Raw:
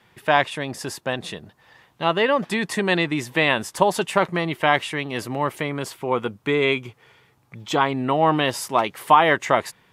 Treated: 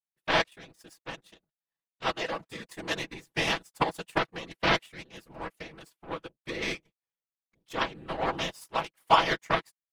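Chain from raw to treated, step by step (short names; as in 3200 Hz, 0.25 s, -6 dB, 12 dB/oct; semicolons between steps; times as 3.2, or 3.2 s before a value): high shelf 4400 Hz +5 dB; power-law curve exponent 2; whisperiser; comb 6.1 ms, depth 38%; gain -2.5 dB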